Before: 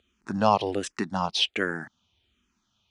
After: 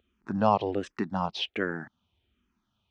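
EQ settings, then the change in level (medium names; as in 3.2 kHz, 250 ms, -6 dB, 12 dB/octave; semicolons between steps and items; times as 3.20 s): tape spacing loss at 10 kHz 28 dB; treble shelf 6.7 kHz +6 dB; 0.0 dB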